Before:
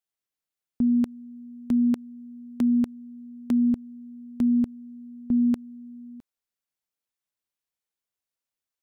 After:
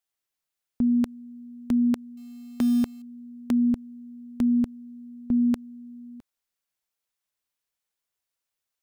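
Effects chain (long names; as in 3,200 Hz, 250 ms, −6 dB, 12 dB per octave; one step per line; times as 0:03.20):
parametric band 220 Hz −4.5 dB 2.1 octaves
0:02.17–0:03.02: log-companded quantiser 6 bits
level +4 dB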